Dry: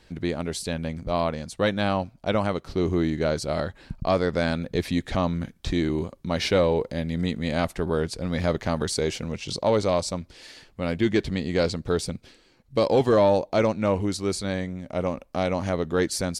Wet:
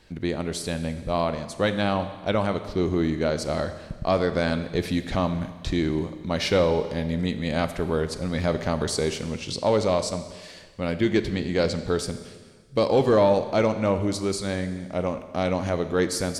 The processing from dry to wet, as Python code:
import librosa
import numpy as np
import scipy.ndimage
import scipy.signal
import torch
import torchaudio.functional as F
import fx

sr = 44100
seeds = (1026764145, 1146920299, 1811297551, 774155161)

y = fx.rev_schroeder(x, sr, rt60_s=1.5, comb_ms=29, drr_db=10.0)